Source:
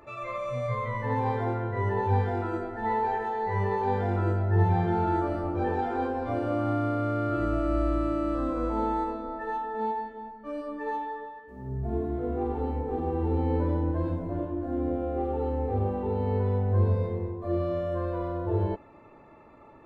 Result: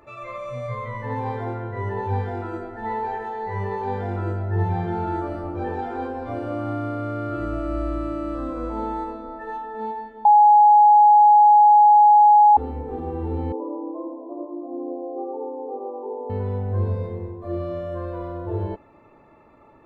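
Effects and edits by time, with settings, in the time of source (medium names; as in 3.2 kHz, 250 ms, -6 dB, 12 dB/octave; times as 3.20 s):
10.25–12.57 s: bleep 836 Hz -9 dBFS
13.52–16.30 s: brick-wall FIR band-pass 260–1200 Hz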